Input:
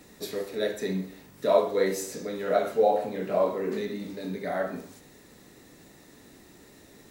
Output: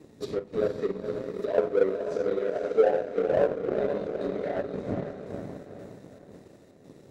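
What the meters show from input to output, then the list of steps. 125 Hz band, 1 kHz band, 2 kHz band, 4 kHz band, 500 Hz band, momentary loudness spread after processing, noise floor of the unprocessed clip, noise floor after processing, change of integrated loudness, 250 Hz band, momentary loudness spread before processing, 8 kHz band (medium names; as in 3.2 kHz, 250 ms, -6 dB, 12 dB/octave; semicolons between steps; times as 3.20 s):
+1.0 dB, -5.5 dB, -3.0 dB, no reading, +1.0 dB, 15 LU, -54 dBFS, -54 dBFS, 0.0 dB, -0.5 dB, 12 LU, under -15 dB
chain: wind noise 140 Hz -33 dBFS; frequency weighting A; square tremolo 1.9 Hz, depth 60%, duty 75%; resonant low shelf 670 Hz +11.5 dB, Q 1.5; low-pass that closes with the level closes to 1.3 kHz, closed at -15.5 dBFS; echo that smears into a reverb 482 ms, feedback 53%, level -5.5 dB; power-law waveshaper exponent 1.4; compression 1.5:1, threshold -34 dBFS, peak gain reduction 9 dB; trim +2.5 dB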